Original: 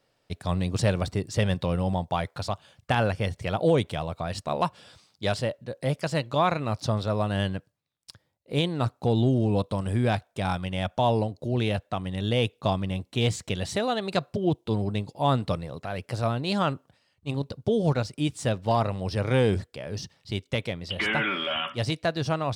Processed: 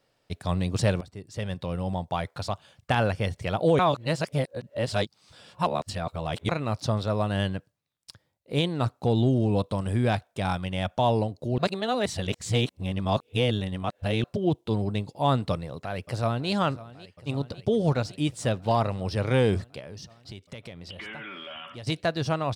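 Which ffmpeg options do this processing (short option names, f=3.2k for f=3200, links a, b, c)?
-filter_complex "[0:a]asplit=2[a][b];[b]afade=t=in:st=15.52:d=0.01,afade=t=out:st=16.5:d=0.01,aecho=0:1:550|1100|1650|2200|2750|3300|3850|4400|4950|5500|6050|6600:0.133352|0.106682|0.0853454|0.0682763|0.054621|0.0436968|0.0349575|0.027966|0.0223728|0.0178982|0.0143186|0.0114549[c];[a][c]amix=inputs=2:normalize=0,asettb=1/sr,asplit=3[d][e][f];[d]atrim=end=19.794[g];[e]atrim=start=19.79:end=21.87,asetpts=PTS-STARTPTS,afade=t=in:d=0.004:c=qsin,afade=t=out:st=2.076:d=0.004:c=qsin,acompressor=threshold=-38dB:ratio=5:attack=3.2:release=140:knee=1:detection=peak[h];[f]atrim=start=21.866[i];[g][h]acrossfade=d=0.004:c1=hsin:c2=qsin[j];[j][i]acrossfade=d=0.004:c1=qsin:c2=hsin,asplit=6[k][l][m][n][o][p];[k]atrim=end=1.01,asetpts=PTS-STARTPTS,afade=t=out:st=1.006:d=0.004:c=hsin:silence=0.112202[q];[l]atrim=start=1.01:end=3.792,asetpts=PTS-STARTPTS,afade=t=in:d=1.96:c=qsin:silence=0.112202[r];[m]atrim=start=3.788:end=6.492,asetpts=PTS-STARTPTS,areverse[s];[n]atrim=start=6.488:end=11.582[t];[o]atrim=start=11.578:end=14.242,asetpts=PTS-STARTPTS,areverse[u];[p]atrim=start=14.238[v];[q][r]concat=n=2:v=0:a=1[w];[w][s]acrossfade=d=0.004:c1=hsin:c2=hsin[x];[x][t]acrossfade=d=0.004:c1=hsin:c2=hsin[y];[y][u]acrossfade=d=0.004:c1=hsin:c2=hsin[z];[z][v]acrossfade=d=0.004:c1=hsin:c2=hsin"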